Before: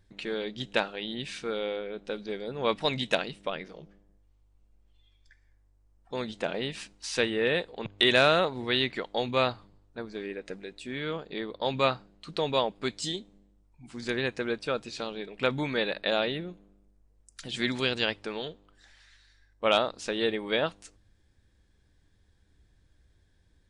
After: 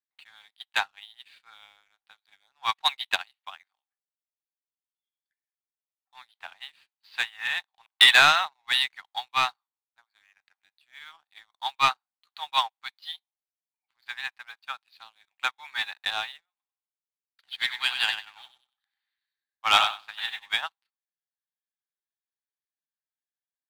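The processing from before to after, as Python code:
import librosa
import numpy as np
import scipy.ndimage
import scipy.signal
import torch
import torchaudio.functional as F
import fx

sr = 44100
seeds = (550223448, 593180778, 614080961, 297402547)

y = fx.echo_thinned(x, sr, ms=95, feedback_pct=43, hz=420.0, wet_db=-4, at=(16.5, 20.51))
y = scipy.signal.sosfilt(scipy.signal.cheby1(5, 1.0, [770.0, 4600.0], 'bandpass', fs=sr, output='sos'), y)
y = fx.leveller(y, sr, passes=2)
y = fx.upward_expand(y, sr, threshold_db=-37.0, expansion=2.5)
y = F.gain(torch.from_numpy(y), 6.5).numpy()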